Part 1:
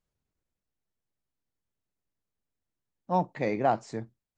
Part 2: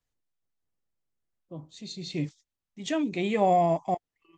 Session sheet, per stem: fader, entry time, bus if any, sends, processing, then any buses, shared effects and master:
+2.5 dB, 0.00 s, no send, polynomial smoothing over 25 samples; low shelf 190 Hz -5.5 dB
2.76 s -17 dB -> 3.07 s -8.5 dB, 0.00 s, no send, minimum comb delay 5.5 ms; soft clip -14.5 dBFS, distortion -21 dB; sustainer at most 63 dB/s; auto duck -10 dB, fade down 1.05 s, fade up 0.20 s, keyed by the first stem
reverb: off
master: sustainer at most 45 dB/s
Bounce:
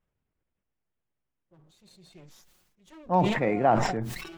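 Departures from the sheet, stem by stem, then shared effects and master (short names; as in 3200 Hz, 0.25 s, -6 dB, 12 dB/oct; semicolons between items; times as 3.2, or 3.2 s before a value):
stem 1: missing low shelf 190 Hz -5.5 dB; stem 2: missing soft clip -14.5 dBFS, distortion -21 dB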